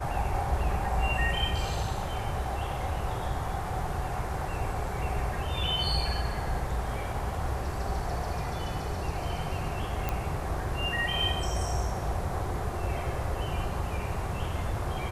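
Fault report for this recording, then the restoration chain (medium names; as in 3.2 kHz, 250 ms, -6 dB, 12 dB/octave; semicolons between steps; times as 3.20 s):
10.09 s: pop -15 dBFS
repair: de-click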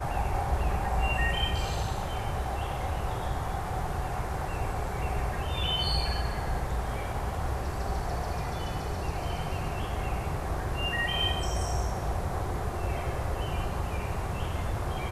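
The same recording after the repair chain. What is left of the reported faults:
nothing left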